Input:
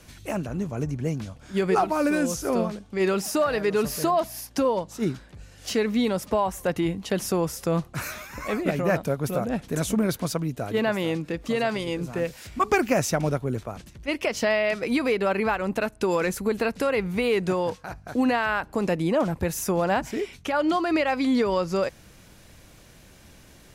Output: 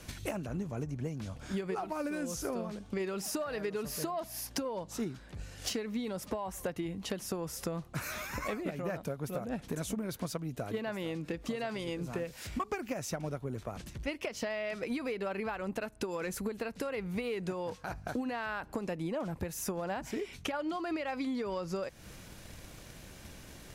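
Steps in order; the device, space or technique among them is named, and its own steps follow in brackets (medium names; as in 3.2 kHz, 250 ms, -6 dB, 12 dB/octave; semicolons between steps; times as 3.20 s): drum-bus smash (transient shaper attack +7 dB, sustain +2 dB; compression 6:1, threshold -33 dBFS, peak gain reduction 20 dB; saturation -24 dBFS, distortion -21 dB)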